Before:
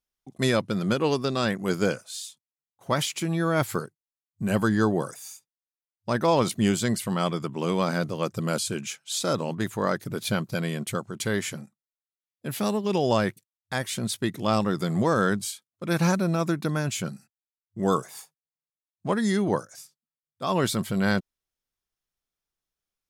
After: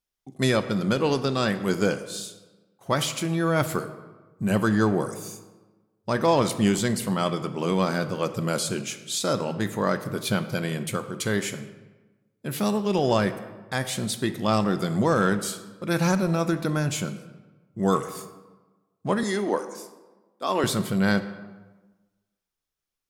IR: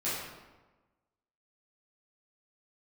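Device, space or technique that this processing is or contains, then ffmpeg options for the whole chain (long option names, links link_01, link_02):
saturated reverb return: -filter_complex "[0:a]asplit=2[link_01][link_02];[1:a]atrim=start_sample=2205[link_03];[link_02][link_03]afir=irnorm=-1:irlink=0,asoftclip=type=tanh:threshold=-13.5dB,volume=-14dB[link_04];[link_01][link_04]amix=inputs=2:normalize=0,asettb=1/sr,asplit=3[link_05][link_06][link_07];[link_05]atrim=end=19.234[link_08];[link_06]atrim=start=19.23:end=20.64,asetpts=PTS-STARTPTS,afade=type=in:duration=0.004:curve=qsin,afade=type=out:start_time=1.406:duration=0.004:curve=qsin,highpass=frequency=250:width=0.5412,highpass=frequency=250:width=1.3066[link_09];[link_07]atrim=start=20.636[link_10];[link_08][link_09]acrossfade=duration=0.004:curve1=hsin:curve2=qsin[link_11];[link_11][link_10]acrossfade=duration=0.004:curve1=qsin:curve2=hsin"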